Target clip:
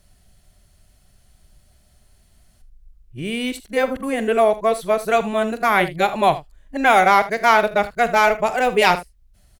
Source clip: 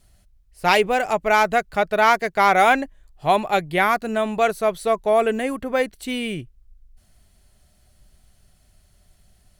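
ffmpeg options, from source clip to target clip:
-filter_complex "[0:a]areverse,asplit=2[a][b];[b]aecho=0:1:44|78:0.168|0.158[c];[a][c]amix=inputs=2:normalize=0,volume=1.5dB"

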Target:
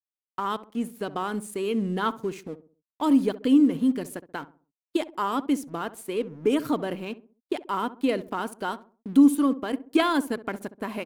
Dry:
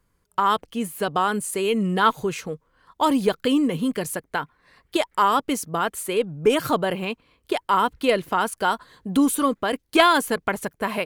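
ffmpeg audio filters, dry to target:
-filter_complex "[0:a]equalizer=f=280:t=o:w=0.8:g=12,aeval=exprs='sgn(val(0))*max(abs(val(0))-0.00944,0)':c=same,agate=range=-33dB:threshold=-40dB:ratio=3:detection=peak,asplit=2[a][b];[b]adelay=66,lowpass=f=970:p=1,volume=-14dB,asplit=2[c][d];[d]adelay=66,lowpass=f=970:p=1,volume=0.41,asplit=2[e][f];[f]adelay=66,lowpass=f=970:p=1,volume=0.41,asplit=2[g][h];[h]adelay=66,lowpass=f=970:p=1,volume=0.41[i];[c][e][g][i]amix=inputs=4:normalize=0[j];[a][j]amix=inputs=2:normalize=0,volume=-9dB"

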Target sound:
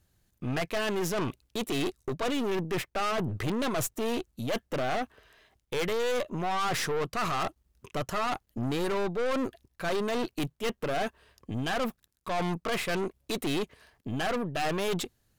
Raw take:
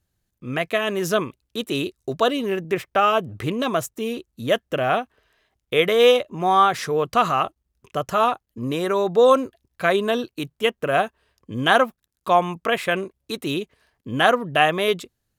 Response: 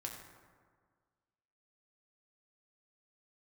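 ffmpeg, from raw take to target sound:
-af "areverse,acompressor=threshold=-26dB:ratio=5,areverse,aeval=exprs='(tanh(50.1*val(0)+0.5)-tanh(0.5))/50.1':c=same,volume=7dB"

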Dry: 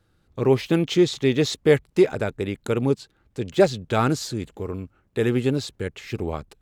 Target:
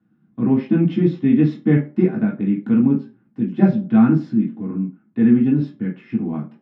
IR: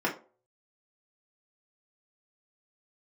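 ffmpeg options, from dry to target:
-filter_complex "[0:a]highpass=140,lowpass=2.8k,lowshelf=f=310:t=q:w=3:g=11[a];[1:a]atrim=start_sample=2205[b];[a][b]afir=irnorm=-1:irlink=0,volume=-14dB"

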